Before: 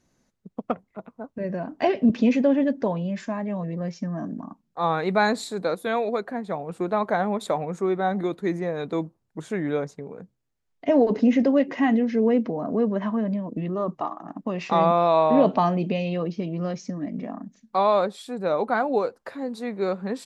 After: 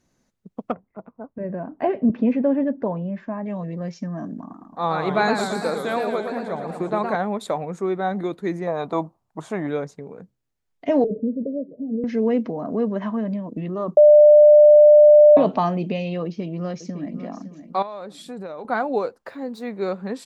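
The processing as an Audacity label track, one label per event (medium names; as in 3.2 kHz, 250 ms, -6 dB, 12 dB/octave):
0.720000	3.460000	low-pass 1.5 kHz
4.380000	7.160000	modulated delay 113 ms, feedback 69%, depth 168 cents, level -6 dB
8.670000	9.670000	high-order bell 870 Hz +10.5 dB 1.2 oct
11.040000	12.040000	rippled Chebyshev low-pass 640 Hz, ripple 9 dB
13.970000	15.370000	bleep 597 Hz -6.5 dBFS
16.240000	17.160000	echo throw 560 ms, feedback 30%, level -12 dB
17.820000	18.650000	compression 20:1, threshold -29 dBFS
19.190000	19.700000	decimation joined by straight lines rate divided by 2×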